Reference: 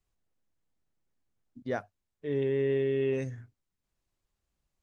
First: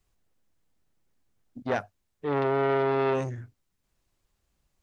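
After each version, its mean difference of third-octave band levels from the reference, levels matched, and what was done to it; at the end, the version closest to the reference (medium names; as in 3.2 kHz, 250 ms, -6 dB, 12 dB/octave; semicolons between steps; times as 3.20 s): 5.0 dB: transformer saturation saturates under 1.1 kHz; trim +7.5 dB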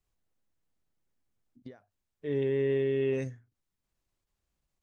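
2.0 dB: endings held to a fixed fall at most 180 dB/s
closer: second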